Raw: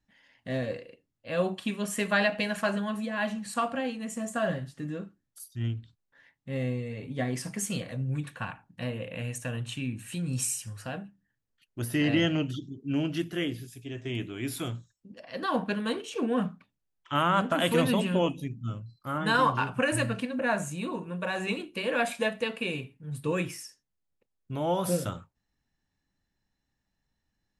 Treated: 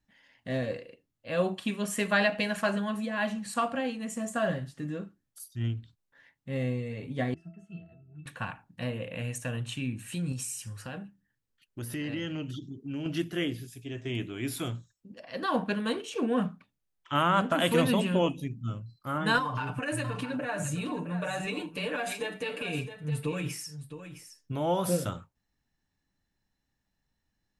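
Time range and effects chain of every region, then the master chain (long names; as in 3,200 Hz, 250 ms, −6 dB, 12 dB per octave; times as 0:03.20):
0:07.34–0:08.26: notch filter 530 Hz, Q 6.2 + resonances in every octave E, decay 0.21 s
0:10.32–0:13.06: notch filter 680 Hz, Q 6.3 + downward compressor 2.5 to 1, threshold −35 dBFS
0:19.38–0:24.52: downward compressor 16 to 1, threshold −30 dBFS + comb filter 6.8 ms, depth 84% + single-tap delay 663 ms −11 dB
whole clip: no processing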